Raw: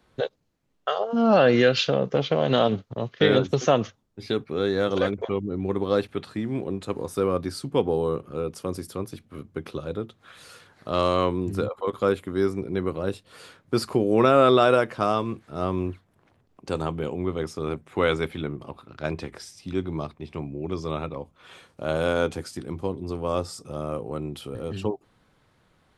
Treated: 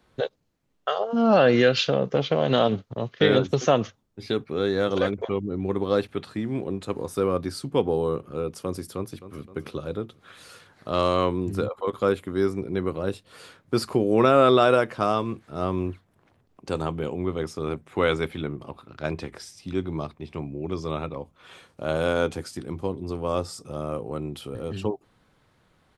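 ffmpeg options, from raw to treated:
ffmpeg -i in.wav -filter_complex "[0:a]asplit=2[link_01][link_02];[link_02]afade=type=in:start_time=8.95:duration=0.01,afade=type=out:start_time=9.47:duration=0.01,aecho=0:1:260|520|780|1040|1300|1560:0.223872|0.12313|0.0677213|0.0372467|0.0204857|0.0112671[link_03];[link_01][link_03]amix=inputs=2:normalize=0" out.wav

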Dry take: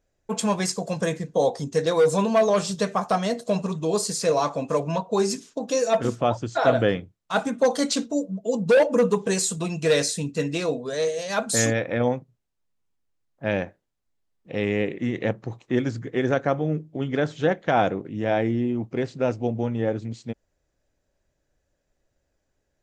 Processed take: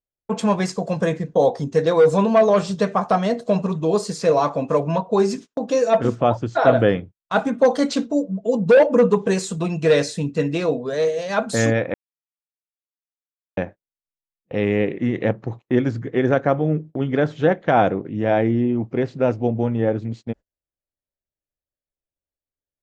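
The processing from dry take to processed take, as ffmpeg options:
ffmpeg -i in.wav -filter_complex "[0:a]asplit=3[link_01][link_02][link_03];[link_01]atrim=end=11.94,asetpts=PTS-STARTPTS,afade=type=out:start_time=11.936:duration=0.004:curve=hsin[link_04];[link_02]atrim=start=11.94:end=13.57,asetpts=PTS-STARTPTS,volume=0[link_05];[link_03]atrim=start=13.57,asetpts=PTS-STARTPTS,afade=type=in:duration=0.004:curve=hsin[link_06];[link_04][link_05][link_06]concat=n=3:v=0:a=1,aemphasis=mode=reproduction:type=75fm,agate=range=-28dB:threshold=-38dB:ratio=16:detection=peak,volume=4dB" out.wav

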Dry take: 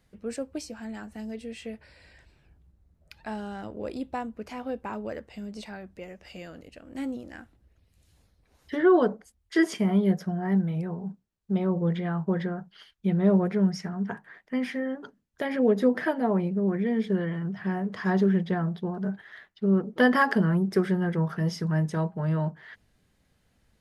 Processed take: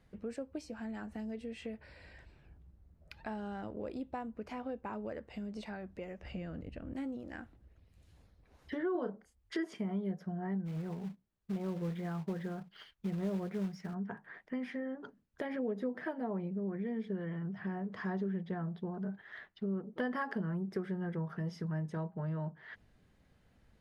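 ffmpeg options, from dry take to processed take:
ffmpeg -i in.wav -filter_complex "[0:a]asettb=1/sr,asplit=3[link_01][link_02][link_03];[link_01]atrim=end=6.234[link_04];[link_02]atrim=start=6.23:end=6.94,asetpts=PTS-STARTPTS,afade=type=in:duration=0.004:curve=qsin,afade=type=out:start_time=0.706:duration=0.004:curve=qsin,bass=frequency=250:gain=11,treble=frequency=4000:gain=-8[link_05];[link_03]atrim=start=6.936[link_06];[link_04][link_05]acrossfade=duration=0.004:curve1=hsin:curve2=qsin[link_07];[link_07][link_06]acrossfade=duration=0.004:curve1=qsin:curve2=hsin,asettb=1/sr,asplit=3[link_08][link_09][link_10];[link_08]atrim=end=8.924[link_11];[link_09]atrim=start=8.92:end=9.55,asetpts=PTS-STARTPTS,afade=type=in:duration=0.004:curve=qsin,afade=type=out:start_time=0.626:duration=0.004:curve=qsin,asplit=2[link_12][link_13];[link_13]adelay=31,volume=-7dB[link_14];[link_12][link_14]amix=inputs=2:normalize=0,atrim=end_sample=27783[link_15];[link_10]atrim=start=9.546[link_16];[link_11][link_15]acrossfade=duration=0.004:curve1=hsin:curve2=qsin[link_17];[link_17][link_16]acrossfade=duration=0.004:curve1=qsin:curve2=hsin,asplit=3[link_18][link_19][link_20];[link_18]afade=type=out:start_time=10.65:duration=0.02[link_21];[link_19]acrusher=bits=4:mode=log:mix=0:aa=0.000001,afade=type=in:start_time=10.65:duration=0.02,afade=type=out:start_time=13.93:duration=0.02[link_22];[link_20]afade=type=in:start_time=13.93:duration=0.02[link_23];[link_21][link_22][link_23]amix=inputs=3:normalize=0,highshelf=frequency=4000:gain=-11.5,acompressor=threshold=-42dB:ratio=2.5,volume=1dB" out.wav

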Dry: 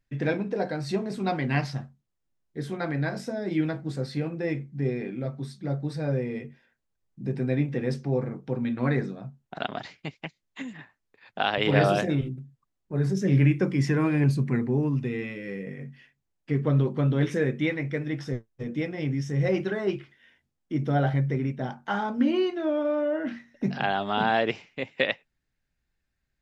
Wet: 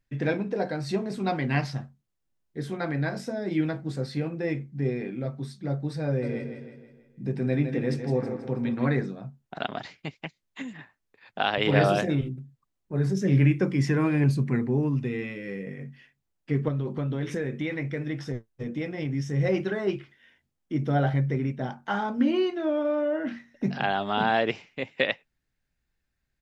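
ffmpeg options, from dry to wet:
ffmpeg -i in.wav -filter_complex "[0:a]asplit=3[link_01][link_02][link_03];[link_01]afade=type=out:start_time=6.21:duration=0.02[link_04];[link_02]aecho=1:1:161|322|483|644|805|966:0.398|0.191|0.0917|0.044|0.0211|0.0101,afade=type=in:start_time=6.21:duration=0.02,afade=type=out:start_time=8.86:duration=0.02[link_05];[link_03]afade=type=in:start_time=8.86:duration=0.02[link_06];[link_04][link_05][link_06]amix=inputs=3:normalize=0,asettb=1/sr,asplit=3[link_07][link_08][link_09];[link_07]atrim=end=16.684[link_10];[link_08]atrim=start=16.68:end=19.15,asetpts=PTS-STARTPTS,afade=type=in:duration=0.004:curve=qsin,afade=type=out:start_time=2.466:duration=0.004:curve=qsin,acompressor=threshold=-25dB:ratio=6:attack=3.2:release=140:knee=1:detection=peak[link_11];[link_09]atrim=start=19.146[link_12];[link_10][link_11]acrossfade=duration=0.004:curve1=hsin:curve2=qsin[link_13];[link_13][link_12]acrossfade=duration=0.004:curve1=qsin:curve2=hsin" out.wav

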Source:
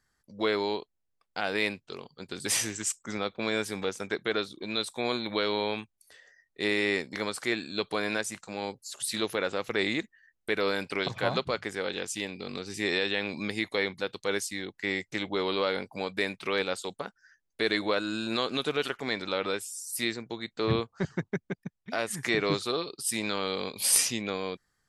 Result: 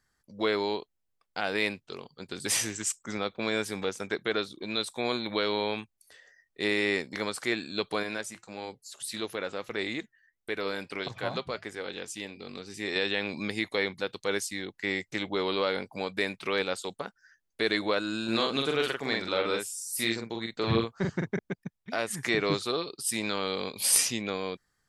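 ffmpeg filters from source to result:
ffmpeg -i in.wav -filter_complex "[0:a]asettb=1/sr,asplit=3[link_01][link_02][link_03];[link_01]atrim=end=8.034[link_04];[link_02]atrim=start=8.03:end=12.96,asetpts=PTS-STARTPTS,afade=type=in:duration=0.004:curve=qsin,afade=type=out:start_time=4.926:duration=0.004:curve=qsin,flanger=delay=2.5:depth=2.1:regen=-83:speed=1.6:shape=sinusoidal[link_05];[link_03]atrim=start=12.956[link_06];[link_04][link_05]acrossfade=duration=0.004:curve1=hsin:curve2=qsin[link_07];[link_07][link_06]acrossfade=duration=0.004:curve1=qsin:curve2=hsin,asettb=1/sr,asplit=3[link_08][link_09][link_10];[link_08]atrim=end=18.244[link_11];[link_09]atrim=start=18.24:end=21.39,asetpts=PTS-STARTPTS,afade=type=in:duration=0.004:curve=qsin,afade=type=out:start_time=3.146:duration=0.004:curve=qsin,asplit=2[link_12][link_13];[link_13]adelay=44,volume=-3dB[link_14];[link_12][link_14]amix=inputs=2:normalize=0,atrim=end_sample=138915[link_15];[link_10]atrim=start=21.386[link_16];[link_11][link_15]acrossfade=duration=0.004:curve1=hsin:curve2=qsin[link_17];[link_17][link_16]acrossfade=duration=0.004:curve1=qsin:curve2=hsin" out.wav

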